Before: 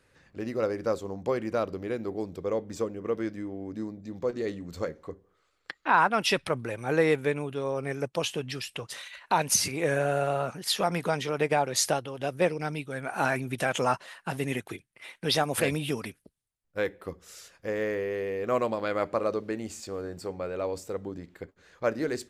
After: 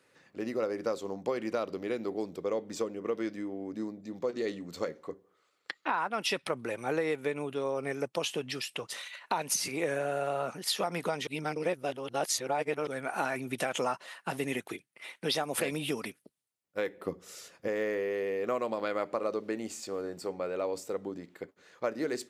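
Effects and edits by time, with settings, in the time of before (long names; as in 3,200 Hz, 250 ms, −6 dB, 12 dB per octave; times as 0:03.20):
0:00.84–0:05.87: dynamic equaliser 3,800 Hz, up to +4 dB, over −51 dBFS, Q 0.83
0:11.27–0:12.87: reverse
0:16.97–0:17.68: low-shelf EQ 480 Hz +8.5 dB
whole clip: high-pass filter 200 Hz 12 dB per octave; downward compressor 6 to 1, threshold −27 dBFS; notch filter 1,600 Hz, Q 19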